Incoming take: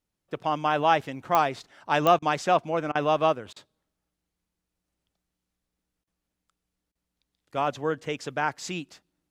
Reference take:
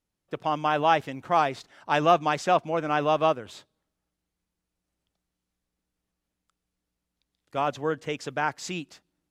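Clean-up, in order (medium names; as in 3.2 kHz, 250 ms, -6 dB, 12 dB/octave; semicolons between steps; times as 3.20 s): de-click; interpolate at 2.19/2.92/3.53/6.04/6.92 s, 31 ms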